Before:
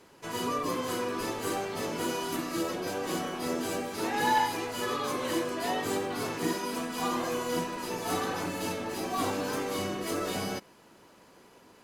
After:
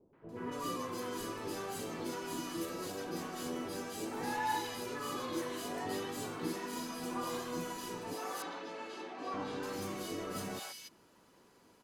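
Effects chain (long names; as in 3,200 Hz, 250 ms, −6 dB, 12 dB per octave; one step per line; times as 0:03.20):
0:08.13–0:09.34: band-pass filter 390–3,700 Hz
three-band delay without the direct sound lows, mids, highs 130/290 ms, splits 640/2,300 Hz
level −6.5 dB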